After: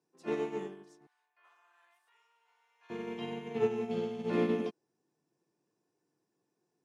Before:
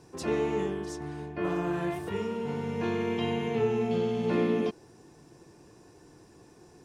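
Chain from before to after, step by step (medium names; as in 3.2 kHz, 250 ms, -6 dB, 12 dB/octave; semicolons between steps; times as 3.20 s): high-pass 160 Hz 24 dB/octave, from 1.07 s 930 Hz, from 2.90 s 140 Hz; upward expansion 2.5:1, over -41 dBFS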